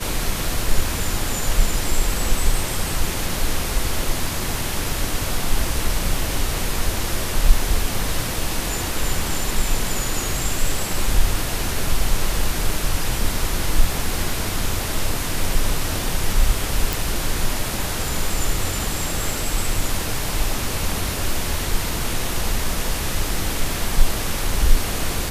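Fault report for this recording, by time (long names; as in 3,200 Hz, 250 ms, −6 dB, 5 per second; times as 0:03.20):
0:16.93: click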